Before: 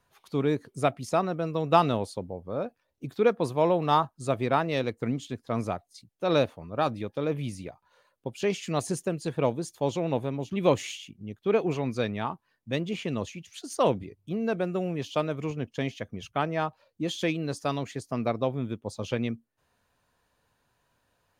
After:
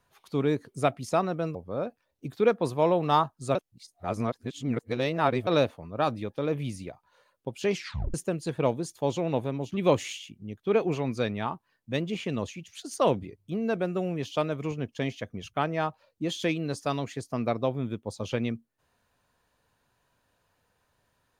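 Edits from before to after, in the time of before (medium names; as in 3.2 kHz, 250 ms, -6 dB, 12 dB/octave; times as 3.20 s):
1.55–2.34 s: delete
4.34–6.26 s: reverse
8.53 s: tape stop 0.40 s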